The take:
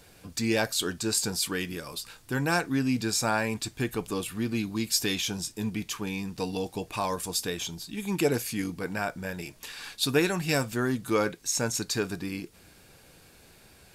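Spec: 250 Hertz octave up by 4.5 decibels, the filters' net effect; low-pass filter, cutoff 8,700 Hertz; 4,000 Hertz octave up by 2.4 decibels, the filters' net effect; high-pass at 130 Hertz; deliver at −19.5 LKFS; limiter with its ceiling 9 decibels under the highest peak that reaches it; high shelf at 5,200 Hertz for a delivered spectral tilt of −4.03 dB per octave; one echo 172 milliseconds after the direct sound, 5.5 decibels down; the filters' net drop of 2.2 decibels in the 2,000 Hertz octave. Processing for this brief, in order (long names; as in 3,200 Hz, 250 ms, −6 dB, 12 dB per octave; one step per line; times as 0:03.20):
high-pass filter 130 Hz
low-pass filter 8,700 Hz
parametric band 250 Hz +6 dB
parametric band 2,000 Hz −4 dB
parametric band 4,000 Hz +6 dB
high-shelf EQ 5,200 Hz −4 dB
brickwall limiter −18 dBFS
single-tap delay 172 ms −5.5 dB
level +9.5 dB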